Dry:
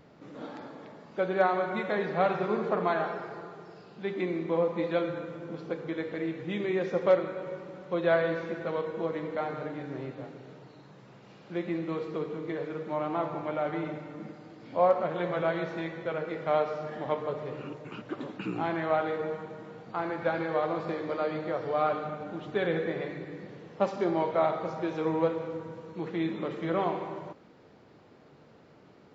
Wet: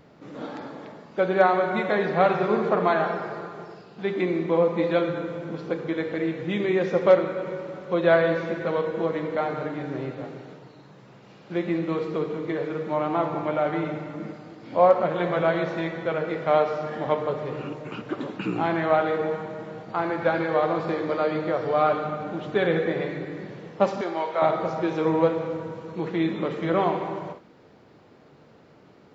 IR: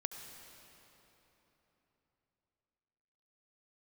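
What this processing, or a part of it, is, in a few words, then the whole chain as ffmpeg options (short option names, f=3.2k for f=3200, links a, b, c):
keyed gated reverb: -filter_complex "[0:a]asplit=3[a][b][c];[1:a]atrim=start_sample=2205[d];[b][d]afir=irnorm=-1:irlink=0[e];[c]apad=whole_len=1285198[f];[e][f]sidechaingate=range=-33dB:threshold=-47dB:ratio=16:detection=peak,volume=-5.5dB[g];[a][g]amix=inputs=2:normalize=0,asettb=1/sr,asplit=3[h][i][j];[h]atrim=end=24.014[k];[i]atrim=start=24.01:end=24.42,asetpts=PTS-STARTPTS,afade=t=in:d=0.004:c=qsin,afade=t=out:st=0.406:d=0.004:c=qsin,highpass=f=1k:p=1[l];[j]atrim=start=24.416[m];[k][l]acrossfade=d=0.004:c1=hsin:c2=qsin[n];[n][m]acrossfade=d=0.004:c1=qsin:c2=hsin,volume=3dB"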